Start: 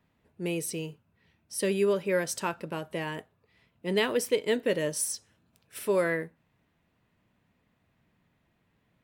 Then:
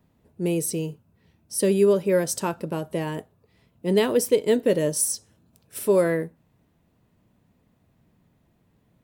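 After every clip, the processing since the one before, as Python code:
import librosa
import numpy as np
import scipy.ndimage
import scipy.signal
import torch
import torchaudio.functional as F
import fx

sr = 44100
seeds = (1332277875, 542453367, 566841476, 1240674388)

y = fx.peak_eq(x, sr, hz=2100.0, db=-10.5, octaves=2.3)
y = y * 10.0 ** (8.5 / 20.0)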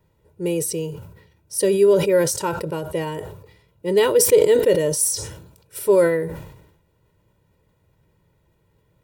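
y = x + 0.75 * np.pad(x, (int(2.1 * sr / 1000.0), 0))[:len(x)]
y = fx.sustainer(y, sr, db_per_s=66.0)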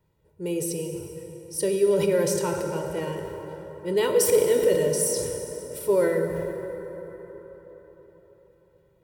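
y = fx.rev_plate(x, sr, seeds[0], rt60_s=4.5, hf_ratio=0.5, predelay_ms=0, drr_db=3.5)
y = y * 10.0 ** (-6.5 / 20.0)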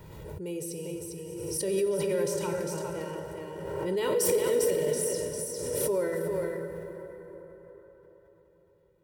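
y = x + 10.0 ** (-4.0 / 20.0) * np.pad(x, (int(401 * sr / 1000.0), 0))[:len(x)]
y = fx.pre_swell(y, sr, db_per_s=30.0)
y = y * 10.0 ** (-8.0 / 20.0)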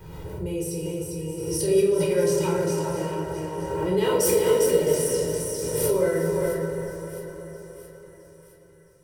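y = fx.echo_split(x, sr, split_hz=1300.0, low_ms=420, high_ms=665, feedback_pct=52, wet_db=-13)
y = fx.room_shoebox(y, sr, seeds[1], volume_m3=630.0, walls='furnished', distance_m=3.9)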